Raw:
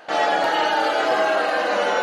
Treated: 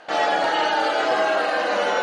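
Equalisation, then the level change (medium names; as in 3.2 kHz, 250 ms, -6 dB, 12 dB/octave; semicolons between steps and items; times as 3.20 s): elliptic low-pass 9.4 kHz, stop band 50 dB; 0.0 dB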